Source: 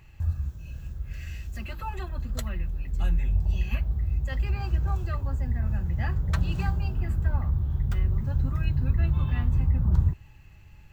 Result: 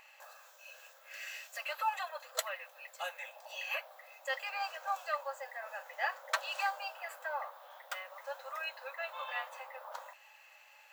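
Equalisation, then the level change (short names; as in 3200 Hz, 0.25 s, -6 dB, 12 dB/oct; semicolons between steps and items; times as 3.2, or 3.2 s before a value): brick-wall FIR high-pass 500 Hz; +4.0 dB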